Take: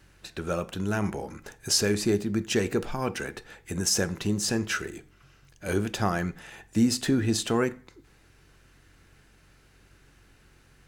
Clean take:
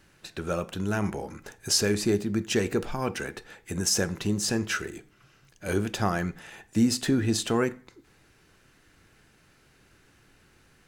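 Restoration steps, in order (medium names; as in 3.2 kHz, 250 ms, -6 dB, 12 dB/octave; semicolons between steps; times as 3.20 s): de-hum 46 Hz, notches 3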